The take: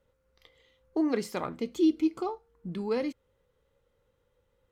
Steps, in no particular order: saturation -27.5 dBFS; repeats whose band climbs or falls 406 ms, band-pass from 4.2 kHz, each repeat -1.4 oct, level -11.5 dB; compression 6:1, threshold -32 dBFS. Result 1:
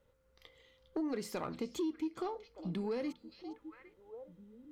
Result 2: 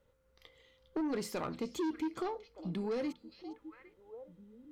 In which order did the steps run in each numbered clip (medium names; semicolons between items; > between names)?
repeats whose band climbs or falls > compression > saturation; repeats whose band climbs or falls > saturation > compression